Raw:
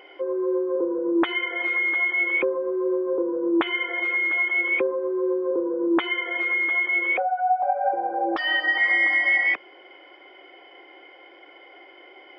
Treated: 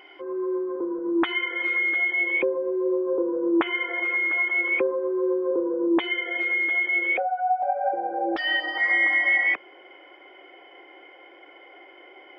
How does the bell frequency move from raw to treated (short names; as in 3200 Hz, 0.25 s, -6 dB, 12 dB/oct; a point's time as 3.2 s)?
bell -12 dB 0.45 oct
1.26 s 520 Hz
2.23 s 1300 Hz
2.83 s 1300 Hz
3.55 s 4000 Hz
5.66 s 4000 Hz
6.06 s 1100 Hz
8.54 s 1100 Hz
8.97 s 4400 Hz